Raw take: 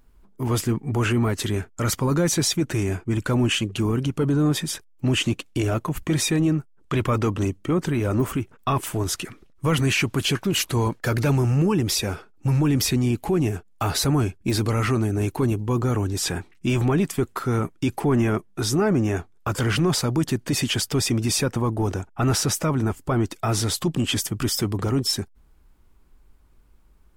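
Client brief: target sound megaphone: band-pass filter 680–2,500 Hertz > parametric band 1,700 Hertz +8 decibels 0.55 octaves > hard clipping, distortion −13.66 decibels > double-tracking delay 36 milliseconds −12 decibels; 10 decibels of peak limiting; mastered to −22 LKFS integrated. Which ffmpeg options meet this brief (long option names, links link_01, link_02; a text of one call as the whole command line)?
ffmpeg -i in.wav -filter_complex "[0:a]alimiter=limit=-23dB:level=0:latency=1,highpass=680,lowpass=2500,equalizer=frequency=1700:width_type=o:width=0.55:gain=8,asoftclip=type=hard:threshold=-31dB,asplit=2[link_01][link_02];[link_02]adelay=36,volume=-12dB[link_03];[link_01][link_03]amix=inputs=2:normalize=0,volume=17.5dB" out.wav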